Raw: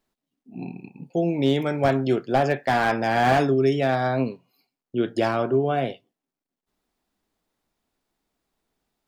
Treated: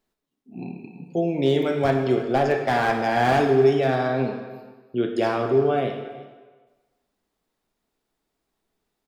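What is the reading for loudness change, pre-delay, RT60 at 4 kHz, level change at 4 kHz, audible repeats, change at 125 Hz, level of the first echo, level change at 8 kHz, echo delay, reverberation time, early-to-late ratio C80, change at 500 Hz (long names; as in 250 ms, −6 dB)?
+1.0 dB, 22 ms, 1.1 s, −0.5 dB, 1, −0.5 dB, −18.5 dB, can't be measured, 330 ms, 1.3 s, 7.5 dB, +2.0 dB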